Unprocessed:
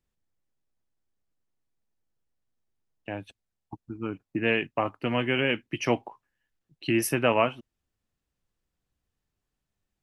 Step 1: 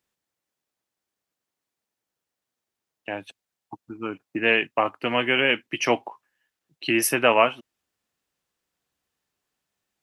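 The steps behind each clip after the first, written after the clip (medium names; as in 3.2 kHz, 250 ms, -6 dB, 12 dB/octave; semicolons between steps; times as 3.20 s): high-pass 530 Hz 6 dB/octave; trim +7 dB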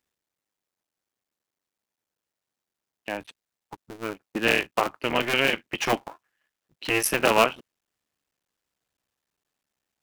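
cycle switcher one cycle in 3, muted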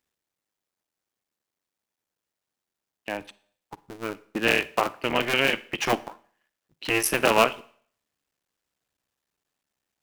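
Schroeder reverb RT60 0.54 s, DRR 18.5 dB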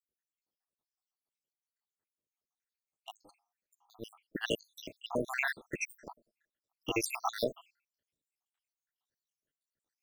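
random holes in the spectrogram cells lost 84%; trim -4 dB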